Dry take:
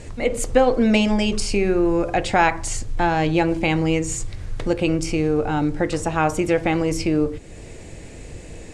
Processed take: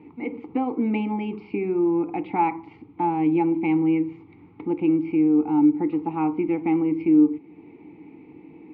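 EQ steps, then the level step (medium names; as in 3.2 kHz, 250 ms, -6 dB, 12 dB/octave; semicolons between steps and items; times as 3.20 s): vowel filter u; distance through air 430 m; cabinet simulation 100–5200 Hz, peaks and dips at 170 Hz +6 dB, 450 Hz +6 dB, 1.3 kHz +7 dB; +6.5 dB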